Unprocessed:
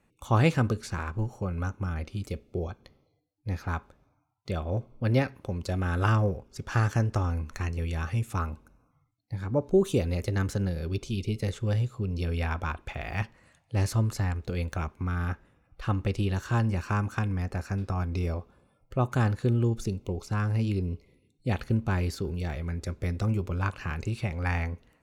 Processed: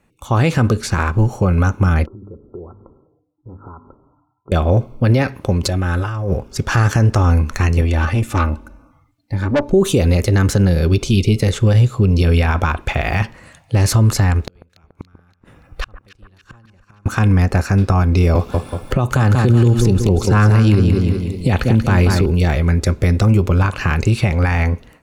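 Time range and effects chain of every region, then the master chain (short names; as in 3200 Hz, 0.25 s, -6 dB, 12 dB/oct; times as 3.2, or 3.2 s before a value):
2.06–4.52 notches 50/100/150/200/250/300 Hz + compressor 5:1, threshold -45 dBFS + rippled Chebyshev low-pass 1400 Hz, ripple 9 dB
5.63–6.32 notch comb 230 Hz + negative-ratio compressor -36 dBFS
7.81–9.73 high shelf 4900 Hz -8 dB + comb 3.4 ms, depth 62% + tube stage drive 28 dB, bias 0.4
14.41–17.06 flipped gate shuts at -29 dBFS, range -41 dB + echo with dull and thin repeats by turns 0.143 s, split 1600 Hz, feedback 72%, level -13 dB
18.35–22.26 feedback echo 0.186 s, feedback 34%, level -8 dB + three-band squash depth 70%
whole clip: AGC gain up to 10.5 dB; maximiser +11.5 dB; gain -4 dB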